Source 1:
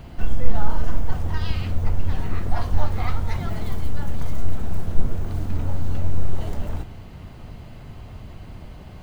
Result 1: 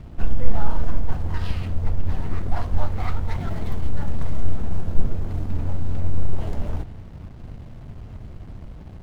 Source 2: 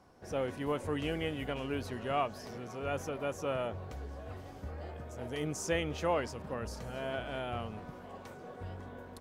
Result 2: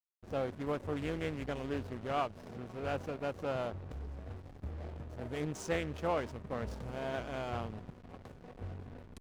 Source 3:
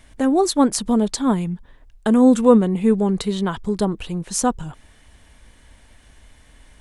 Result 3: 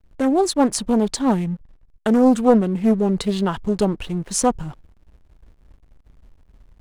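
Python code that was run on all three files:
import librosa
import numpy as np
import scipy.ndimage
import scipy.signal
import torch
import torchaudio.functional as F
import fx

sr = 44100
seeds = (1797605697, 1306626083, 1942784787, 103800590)

p1 = fx.rider(x, sr, range_db=3, speed_s=0.5)
p2 = x + F.gain(torch.from_numpy(p1), 1.5).numpy()
p3 = fx.backlash(p2, sr, play_db=-30.5)
p4 = fx.doppler_dist(p3, sr, depth_ms=0.34)
y = F.gain(torch.from_numpy(p4), -7.0).numpy()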